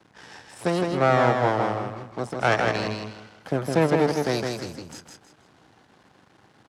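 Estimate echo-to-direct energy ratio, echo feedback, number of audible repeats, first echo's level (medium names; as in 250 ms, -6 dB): -3.5 dB, 29%, 3, -4.0 dB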